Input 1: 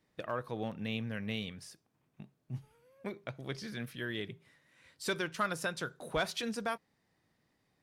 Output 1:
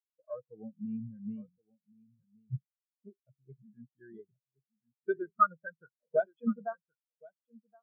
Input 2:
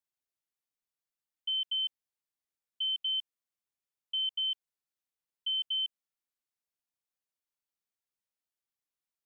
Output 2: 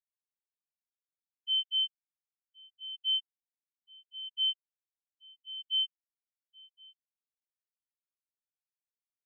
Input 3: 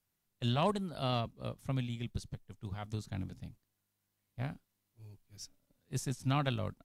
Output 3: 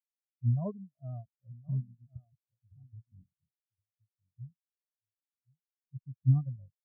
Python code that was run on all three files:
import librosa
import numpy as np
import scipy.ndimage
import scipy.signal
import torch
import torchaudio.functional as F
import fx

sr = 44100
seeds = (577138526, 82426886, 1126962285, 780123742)

y = scipy.signal.sosfilt(scipy.signal.butter(2, 3500.0, 'lowpass', fs=sr, output='sos'), x)
y = y + 10.0 ** (-6.5 / 20.0) * np.pad(y, (int(1070 * sr / 1000.0), 0))[:len(y)]
y = fx.spectral_expand(y, sr, expansion=4.0)
y = y * librosa.db_to_amplitude(6.0)